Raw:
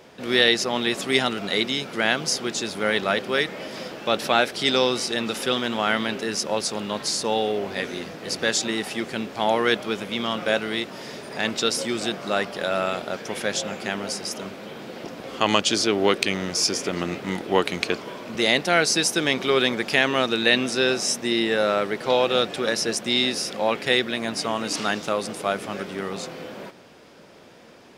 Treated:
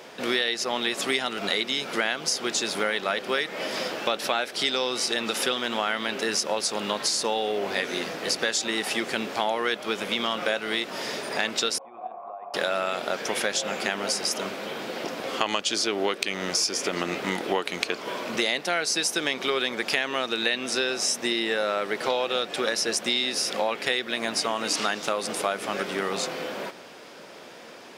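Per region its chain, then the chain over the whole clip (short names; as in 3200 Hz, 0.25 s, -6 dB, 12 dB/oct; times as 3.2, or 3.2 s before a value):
11.78–12.54 negative-ratio compressor -26 dBFS, ratio -0.5 + vocal tract filter a + notches 50/100/150/200/250/300/350/400/450 Hz
whole clip: HPF 450 Hz 6 dB/oct; compressor 6:1, threshold -29 dBFS; gain +6.5 dB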